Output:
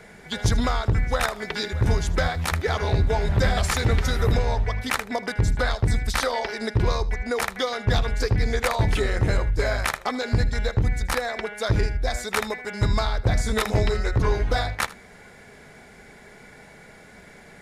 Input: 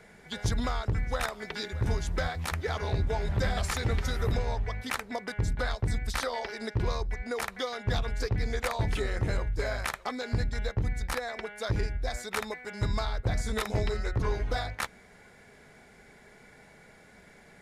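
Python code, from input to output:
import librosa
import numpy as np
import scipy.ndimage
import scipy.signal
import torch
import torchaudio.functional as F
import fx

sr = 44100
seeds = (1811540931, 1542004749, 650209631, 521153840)

y = x + 10.0 ** (-18.5 / 20.0) * np.pad(x, (int(78 * sr / 1000.0), 0))[:len(x)]
y = y * librosa.db_to_amplitude(7.5)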